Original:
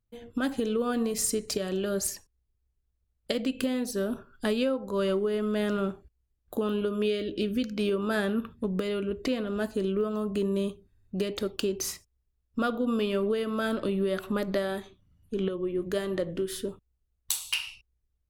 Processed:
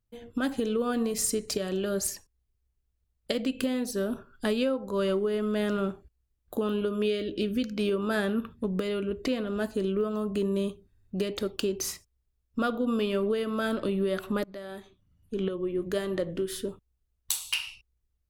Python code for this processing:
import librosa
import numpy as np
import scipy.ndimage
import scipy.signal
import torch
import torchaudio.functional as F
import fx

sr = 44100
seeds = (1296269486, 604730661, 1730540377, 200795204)

y = fx.edit(x, sr, fx.fade_in_from(start_s=14.44, length_s=1.33, curve='qsin', floor_db=-21.5), tone=tone)